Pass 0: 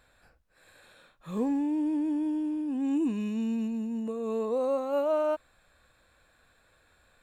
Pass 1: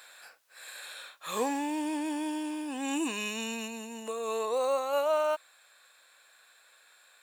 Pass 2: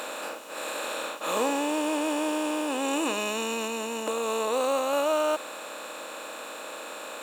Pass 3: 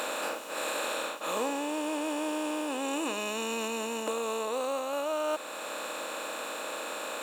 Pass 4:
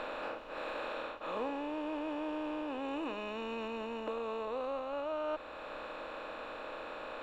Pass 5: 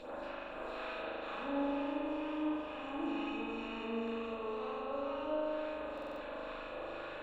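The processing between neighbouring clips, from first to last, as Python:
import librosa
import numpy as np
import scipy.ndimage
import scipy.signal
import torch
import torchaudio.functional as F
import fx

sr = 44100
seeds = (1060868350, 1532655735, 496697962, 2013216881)

y1 = scipy.signal.sosfilt(scipy.signal.butter(2, 670.0, 'highpass', fs=sr, output='sos'), x)
y1 = fx.high_shelf(y1, sr, hz=2100.0, db=10.0)
y1 = fx.rider(y1, sr, range_db=4, speed_s=2.0)
y1 = y1 * 10.0 ** (5.0 / 20.0)
y2 = fx.bin_compress(y1, sr, power=0.4)
y3 = fx.rider(y2, sr, range_db=5, speed_s=0.5)
y3 = y3 * 10.0 ** (-3.0 / 20.0)
y4 = fx.dmg_noise_colour(y3, sr, seeds[0], colour='brown', level_db=-58.0)
y4 = fx.air_absorb(y4, sr, metres=320.0)
y4 = y4 * 10.0 ** (-4.5 / 20.0)
y5 = fx.phaser_stages(y4, sr, stages=2, low_hz=290.0, high_hz=3700.0, hz=2.1, feedback_pct=30)
y5 = fx.rev_spring(y5, sr, rt60_s=3.3, pass_ms=(39,), chirp_ms=45, drr_db=-6.5)
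y5 = fx.buffer_glitch(y5, sr, at_s=(5.93,), block=2048, repeats=5)
y5 = y5 * 10.0 ** (-5.0 / 20.0)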